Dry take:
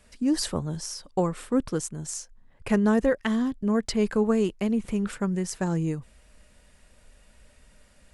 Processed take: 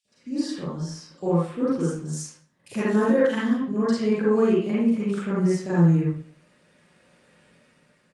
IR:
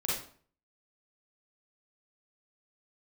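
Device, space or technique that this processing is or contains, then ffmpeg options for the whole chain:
far-field microphone of a smart speaker: -filter_complex "[0:a]lowpass=5300,asplit=3[link_01][link_02][link_03];[link_01]afade=type=out:start_time=2.12:duration=0.02[link_04];[link_02]aemphasis=mode=production:type=50fm,afade=type=in:start_time=2.12:duration=0.02,afade=type=out:start_time=3.59:duration=0.02[link_05];[link_03]afade=type=in:start_time=3.59:duration=0.02[link_06];[link_04][link_05][link_06]amix=inputs=3:normalize=0,acrossover=split=650|3300[link_07][link_08][link_09];[link_07]adelay=50[link_10];[link_08]adelay=80[link_11];[link_10][link_11][link_09]amix=inputs=3:normalize=0[link_12];[1:a]atrim=start_sample=2205[link_13];[link_12][link_13]afir=irnorm=-1:irlink=0,highpass=frequency=130:width=0.5412,highpass=frequency=130:width=1.3066,dynaudnorm=framelen=340:gausssize=7:maxgain=15dB,volume=-8dB" -ar 48000 -c:a libopus -b:a 48k

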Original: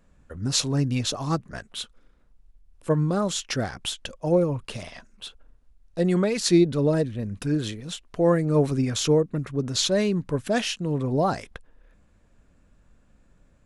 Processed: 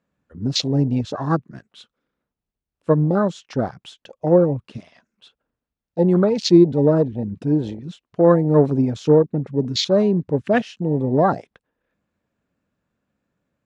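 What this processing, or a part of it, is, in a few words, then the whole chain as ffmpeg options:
over-cleaned archive recording: -af "highpass=130,lowpass=5500,afwtdn=0.0355,volume=6.5dB"

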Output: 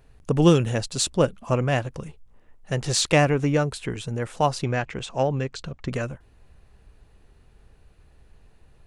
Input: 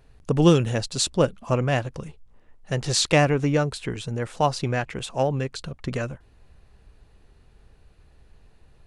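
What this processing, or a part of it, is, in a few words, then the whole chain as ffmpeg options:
exciter from parts: -filter_complex "[0:a]asplit=2[link_01][link_02];[link_02]highpass=frequency=4000:width=0.5412,highpass=frequency=4000:width=1.3066,asoftclip=type=tanh:threshold=-18dB,volume=-11dB[link_03];[link_01][link_03]amix=inputs=2:normalize=0,asettb=1/sr,asplit=3[link_04][link_05][link_06];[link_04]atrim=end=4.634[link_07];[link_05]atrim=start=4.63:end=5.89,asetpts=PTS-STARTPTS,afade=type=in:duration=0.004:curve=qsin,afade=type=out:start_time=1.256:duration=0.004:curve=qsin,lowpass=frequency=7500:width=0.5412,lowpass=frequency=7500:width=1.3066[link_08];[link_06]atrim=start=5.886[link_09];[link_07][link_08]acrossfade=duration=0.004:curve1=hsin:curve2=qsin[link_10];[link_10][link_09]acrossfade=duration=0.004:curve1=qsin:curve2=hsin"

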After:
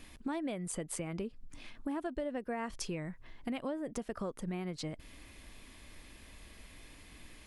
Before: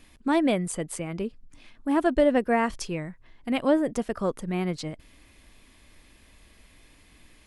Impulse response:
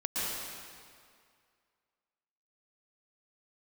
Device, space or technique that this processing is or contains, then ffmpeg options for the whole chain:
serial compression, peaks first: -af "acompressor=threshold=-33dB:ratio=5,acompressor=threshold=-42dB:ratio=1.5,volume=1.5dB"

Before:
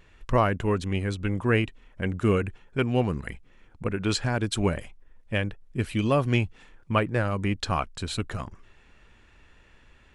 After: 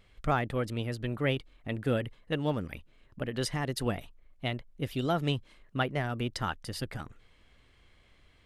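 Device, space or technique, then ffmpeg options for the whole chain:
nightcore: -af "asetrate=52920,aresample=44100,volume=-6dB"

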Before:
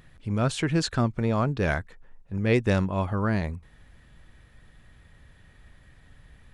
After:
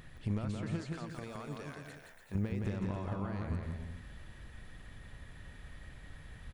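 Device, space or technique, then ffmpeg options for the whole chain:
de-esser from a sidechain: -filter_complex "[0:a]asettb=1/sr,asplit=3[link_01][link_02][link_03];[link_01]atrim=end=0.954[link_04];[link_02]atrim=start=0.95:end=2.35,asetpts=PTS-STARTPTS,afade=type=in:duration=0.004:curve=qsin,afade=type=out:start_time=1.396:duration=0.004:curve=qsin,aemphasis=mode=production:type=riaa[link_05];[link_03]atrim=start=2.346[link_06];[link_04][link_05]acrossfade=duration=0.004:curve1=hsin:curve2=qsin[link_07];[link_07][link_06]acrossfade=duration=0.004:curve1=qsin:curve2=hsin,asplit=2[link_08][link_09];[link_09]highpass=frequency=5100:poles=1,apad=whole_len=288079[link_10];[link_08][link_10]sidechaincompress=threshold=-58dB:ratio=10:attack=3.7:release=53,aecho=1:1:170|289|372.3|430.6|471.4:0.631|0.398|0.251|0.158|0.1,volume=1dB"

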